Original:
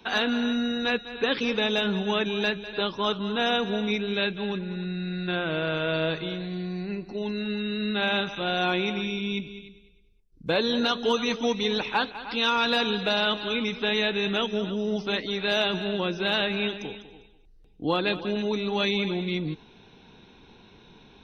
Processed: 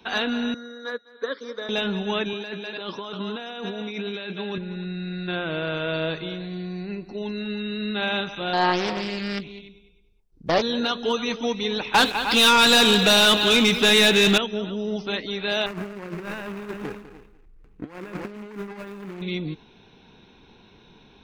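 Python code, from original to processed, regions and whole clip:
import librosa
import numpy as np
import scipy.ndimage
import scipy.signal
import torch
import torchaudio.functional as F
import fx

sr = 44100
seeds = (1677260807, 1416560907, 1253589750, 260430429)

y = fx.chain(x, sr, fx.highpass(hz=310.0, slope=24),
    fx.fixed_phaser(hz=530.0, stages=8),
    fx.upward_expand(threshold_db=-47.0, expansion=1.5), at=(0.54, 1.69))
y = fx.chain(y, sr, fx.highpass(hz=190.0, slope=12),
    fx.over_compress(threshold_db=-32.0, ratio=-1.0), at=(2.33, 4.58))
y = fx.chain(y, sr, fx.peak_eq(hz=820.0, db=9.5, octaves=1.1),
    fx.doppler_dist(depth_ms=0.5), at=(8.53, 10.62))
y = fx.chain(y, sr, fx.high_shelf(hz=4800.0, db=11.0),
    fx.leveller(passes=3), at=(11.94, 14.38))
y = fx.chain(y, sr, fx.median_filter(points=41),
    fx.band_shelf(hz=1600.0, db=9.0, octaves=1.7),
    fx.over_compress(threshold_db=-33.0, ratio=-0.5), at=(15.66, 19.22))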